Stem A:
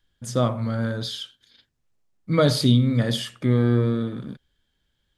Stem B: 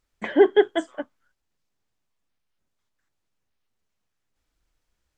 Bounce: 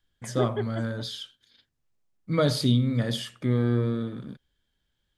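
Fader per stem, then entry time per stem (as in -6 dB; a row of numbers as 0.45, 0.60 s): -4.5, -14.5 dB; 0.00, 0.00 s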